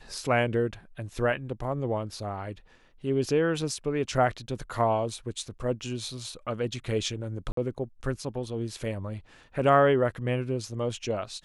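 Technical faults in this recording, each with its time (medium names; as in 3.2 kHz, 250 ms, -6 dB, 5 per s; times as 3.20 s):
7.52–7.57 s: dropout 53 ms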